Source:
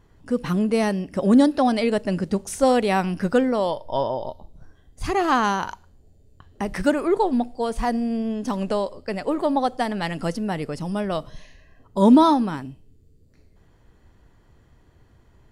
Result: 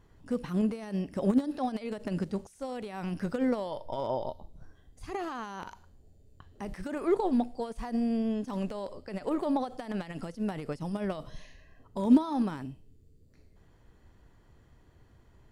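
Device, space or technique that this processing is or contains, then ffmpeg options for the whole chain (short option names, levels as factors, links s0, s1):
de-esser from a sidechain: -filter_complex "[0:a]asplit=2[s0][s1];[s1]highpass=6200,apad=whole_len=684170[s2];[s0][s2]sidechaincompress=threshold=0.00251:ratio=16:attack=0.86:release=45,volume=0.631"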